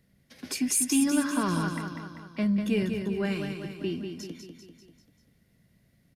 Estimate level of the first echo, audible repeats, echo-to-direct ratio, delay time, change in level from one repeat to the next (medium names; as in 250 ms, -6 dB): -6.5 dB, 5, -5.0 dB, 196 ms, -5.0 dB